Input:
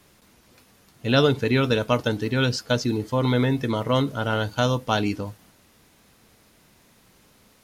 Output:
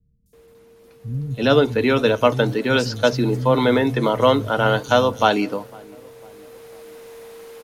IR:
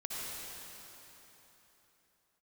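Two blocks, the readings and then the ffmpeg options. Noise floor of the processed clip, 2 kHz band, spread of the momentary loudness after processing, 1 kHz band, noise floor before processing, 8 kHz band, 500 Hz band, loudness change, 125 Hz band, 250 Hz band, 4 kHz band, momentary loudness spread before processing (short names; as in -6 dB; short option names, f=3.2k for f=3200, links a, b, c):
-51 dBFS, +5.0 dB, 7 LU, +7.0 dB, -58 dBFS, +1.5 dB, +6.5 dB, +4.5 dB, +0.5 dB, +3.0 dB, +2.5 dB, 5 LU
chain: -filter_complex "[0:a]asplit=2[a][b];[b]adelay=501,lowpass=f=860:p=1,volume=-23dB,asplit=2[c][d];[d]adelay=501,lowpass=f=860:p=1,volume=0.54,asplit=2[e][f];[f]adelay=501,lowpass=f=860:p=1,volume=0.54,asplit=2[g][h];[h]adelay=501,lowpass=f=860:p=1,volume=0.54[i];[c][e][g][i]amix=inputs=4:normalize=0[j];[a][j]amix=inputs=2:normalize=0,aeval=exprs='val(0)+0.00316*sin(2*PI*460*n/s)':c=same,tiltshelf=f=970:g=3.5,acrossover=split=420[k][l];[l]dynaudnorm=f=200:g=13:m=14dB[m];[k][m]amix=inputs=2:normalize=0,equalizer=f=91:w=5.2:g=-8,acrossover=split=160|5700[n][o][p];[p]adelay=260[q];[o]adelay=330[r];[n][r][q]amix=inputs=3:normalize=0"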